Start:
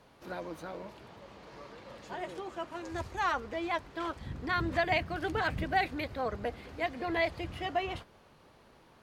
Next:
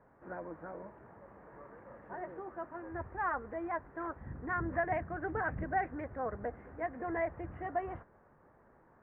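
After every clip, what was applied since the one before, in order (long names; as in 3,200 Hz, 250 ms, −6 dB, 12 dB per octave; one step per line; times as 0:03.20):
elliptic low-pass filter 1,800 Hz, stop band 70 dB
level −3 dB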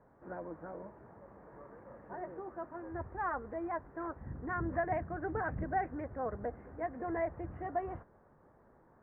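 high-shelf EQ 2,000 Hz −11.5 dB
level +1 dB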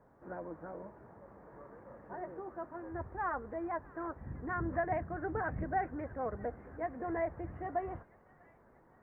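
delay with a high-pass on its return 642 ms, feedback 60%, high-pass 1,800 Hz, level −16.5 dB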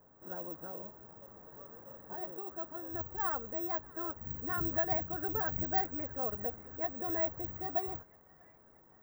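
bad sample-rate conversion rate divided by 2×, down none, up zero stuff
level −1.5 dB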